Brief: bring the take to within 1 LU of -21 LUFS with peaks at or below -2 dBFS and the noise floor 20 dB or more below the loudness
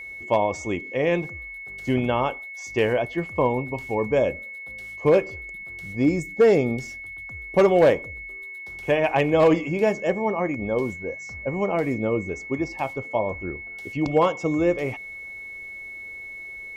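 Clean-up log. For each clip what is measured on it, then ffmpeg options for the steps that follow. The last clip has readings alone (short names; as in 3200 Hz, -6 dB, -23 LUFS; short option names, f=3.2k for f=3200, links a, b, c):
steady tone 2200 Hz; tone level -35 dBFS; loudness -23.5 LUFS; peak -9.0 dBFS; loudness target -21.0 LUFS
-> -af "bandreject=f=2.2k:w=30"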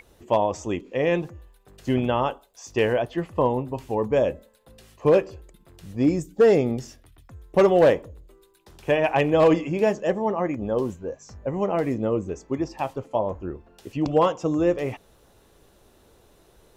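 steady tone none; loudness -23.5 LUFS; peak -9.5 dBFS; loudness target -21.0 LUFS
-> -af "volume=2.5dB"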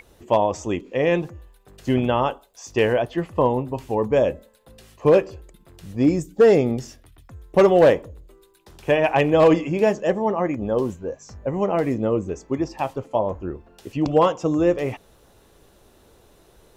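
loudness -21.0 LUFS; peak -7.0 dBFS; noise floor -56 dBFS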